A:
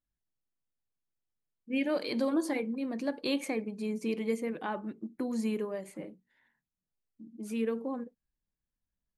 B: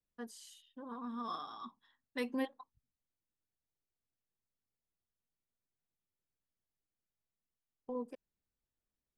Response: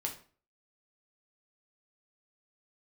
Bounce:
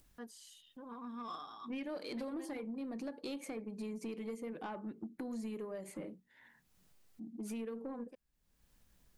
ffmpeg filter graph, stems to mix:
-filter_complex "[0:a]adynamicequalizer=threshold=0.00251:dfrequency=2600:dqfactor=0.86:tfrequency=2600:tqfactor=0.86:attack=5:release=100:ratio=0.375:range=2:mode=cutabove:tftype=bell,acompressor=threshold=-41dB:ratio=5,volume=2.5dB,asplit=2[a][b];[1:a]volume=-2.5dB[c];[b]apad=whole_len=404659[d];[c][d]sidechaincompress=threshold=-49dB:ratio=10:attack=16:release=279[e];[a][e]amix=inputs=2:normalize=0,acompressor=mode=upward:threshold=-52dB:ratio=2.5,asoftclip=type=tanh:threshold=-34.5dB"

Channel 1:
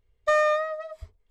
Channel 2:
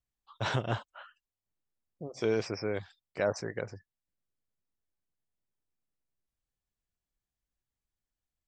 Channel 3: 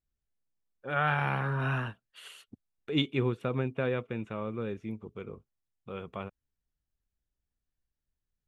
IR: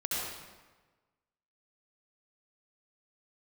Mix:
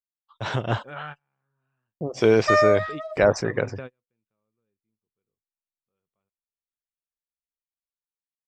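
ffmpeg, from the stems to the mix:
-filter_complex "[0:a]asplit=2[a][b];[b]adelay=3.1,afreqshift=-1.9[c];[a][c]amix=inputs=2:normalize=1,adelay=2200,volume=-7.5dB[d];[1:a]agate=range=-33dB:threshold=-52dB:ratio=3:detection=peak,volume=-0.5dB,asplit=2[e][f];[2:a]acompressor=threshold=-29dB:ratio=6,volume=-15dB[g];[f]apad=whole_len=373745[h];[g][h]sidechaingate=range=-42dB:threshold=-56dB:ratio=16:detection=peak[i];[d][e][i]amix=inputs=3:normalize=0,highshelf=f=6.1k:g=-5.5,dynaudnorm=f=110:g=13:m=12.5dB"

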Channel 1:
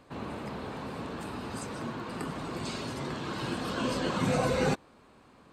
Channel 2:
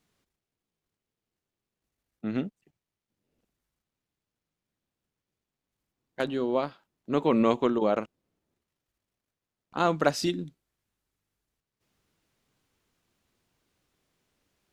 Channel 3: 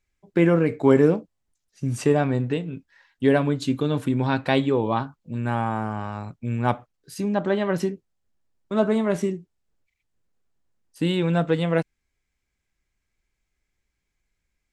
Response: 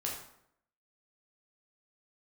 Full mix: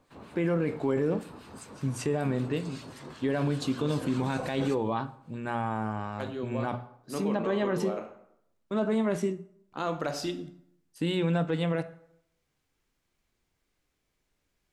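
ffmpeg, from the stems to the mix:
-filter_complex "[0:a]acrossover=split=1300[a][b];[a]aeval=exprs='val(0)*(1-0.7/2+0.7/2*cos(2*PI*5.2*n/s))':c=same[c];[b]aeval=exprs='val(0)*(1-0.7/2-0.7/2*cos(2*PI*5.2*n/s))':c=same[d];[c][d]amix=inputs=2:normalize=0,highshelf=f=6.8k:g=6.5,volume=-7.5dB,asplit=2[e][f];[f]volume=-16.5dB[g];[1:a]volume=-7.5dB,asplit=2[h][i];[i]volume=-7.5dB[j];[2:a]volume=-5dB,asplit=3[k][l][m];[l]volume=-15.5dB[n];[m]apad=whole_len=649206[o];[h][o]sidechaincompress=threshold=-35dB:ratio=8:attack=16:release=644[p];[3:a]atrim=start_sample=2205[q];[g][j][n]amix=inputs=3:normalize=0[r];[r][q]afir=irnorm=-1:irlink=0[s];[e][p][k][s]amix=inputs=4:normalize=0,bandreject=f=60:t=h:w=6,bandreject=f=120:t=h:w=6,bandreject=f=180:t=h:w=6,bandreject=f=240:t=h:w=6,alimiter=limit=-19dB:level=0:latency=1:release=22"

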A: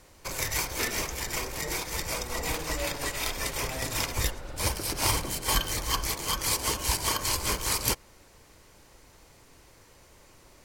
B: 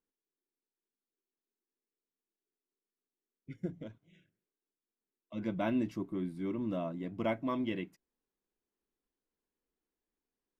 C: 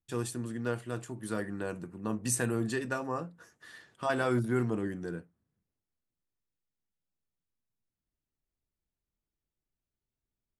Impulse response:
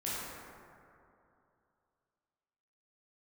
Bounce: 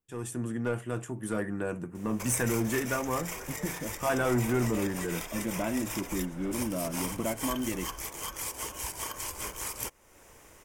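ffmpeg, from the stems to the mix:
-filter_complex "[0:a]bass=f=250:g=-5,treble=f=4k:g=2,acompressor=threshold=-44dB:ratio=2,adelay=1950,volume=-6.5dB[a];[1:a]acompressor=threshold=-42dB:ratio=2.5,volume=0dB[b];[2:a]asoftclip=type=tanh:threshold=-25.5dB,volume=-4.5dB[c];[a][b][c]amix=inputs=3:normalize=0,equalizer=f=4.3k:w=3.3:g=-13.5,dynaudnorm=f=110:g=5:m=9dB"

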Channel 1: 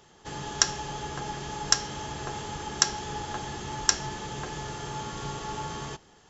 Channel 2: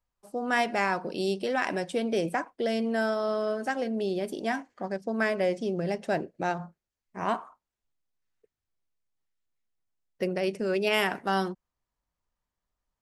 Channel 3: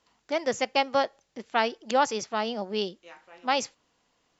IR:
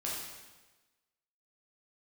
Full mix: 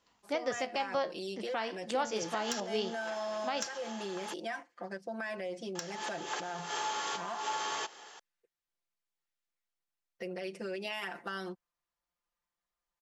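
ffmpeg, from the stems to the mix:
-filter_complex "[0:a]acontrast=81,highpass=440,adelay=1900,volume=-6dB,asplit=3[a][b][c];[a]atrim=end=4.34,asetpts=PTS-STARTPTS,afade=t=out:st=4.336:d=0.004:c=hsin[d];[b]atrim=start=4.34:end=5.75,asetpts=PTS-STARTPTS,volume=0[e];[c]atrim=start=5.75,asetpts=PTS-STARTPTS,afade=t=in:d=0.004:c=hsin[f];[d][e][f]concat=n=3:v=0:a=1[g];[1:a]aecho=1:1:5.8:0.98,alimiter=limit=-21.5dB:level=0:latency=1:release=79,volume=-12dB,asplit=2[h][i];[2:a]flanger=delay=9.9:depth=7.1:regen=69:speed=0.2:shape=triangular,volume=1dB[j];[i]apad=whole_len=361408[k];[g][k]sidechaincompress=threshold=-56dB:ratio=6:attack=16:release=123[l];[l][h]amix=inputs=2:normalize=0,asplit=2[m][n];[n]highpass=f=720:p=1,volume=13dB,asoftclip=type=tanh:threshold=-8.5dB[o];[m][o]amix=inputs=2:normalize=0,lowpass=f=6.5k:p=1,volume=-6dB,acompressor=threshold=-34dB:ratio=2.5,volume=0dB[p];[j][p]amix=inputs=2:normalize=0,alimiter=limit=-21.5dB:level=0:latency=1:release=220"

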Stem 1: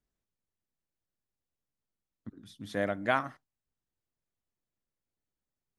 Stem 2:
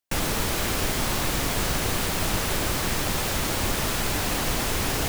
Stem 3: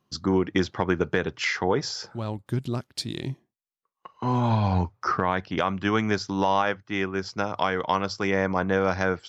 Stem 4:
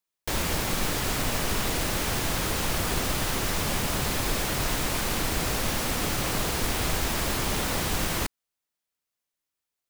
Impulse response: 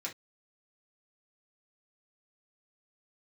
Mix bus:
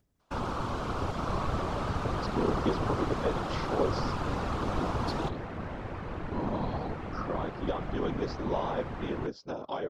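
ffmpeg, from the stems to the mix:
-filter_complex "[0:a]tiltshelf=f=700:g=4,volume=-15dB[a];[1:a]lowpass=3.9k,highshelf=f=1.5k:t=q:w=3:g=-6.5,adelay=200,volume=0dB[b];[2:a]equalizer=f=125:t=o:w=1:g=-11,equalizer=f=250:t=o:w=1:g=7,equalizer=f=500:t=o:w=1:g=7,equalizer=f=2k:t=o:w=1:g=-10,equalizer=f=4k:t=o:w=1:g=6,equalizer=f=8k:t=o:w=1:g=-10,adelay=2100,volume=-6dB[c];[3:a]lowpass=1.3k,adelay=1000,volume=-1.5dB[d];[a][b][c][d]amix=inputs=4:normalize=0,acompressor=mode=upward:threshold=-44dB:ratio=2.5,afftfilt=real='hypot(re,im)*cos(2*PI*random(0))':imag='hypot(re,im)*sin(2*PI*random(1))':win_size=512:overlap=0.75"

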